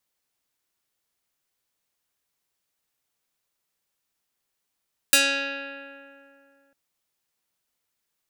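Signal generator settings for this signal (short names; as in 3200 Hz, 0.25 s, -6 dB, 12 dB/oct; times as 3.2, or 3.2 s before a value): plucked string C#4, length 1.60 s, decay 2.60 s, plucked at 0.26, medium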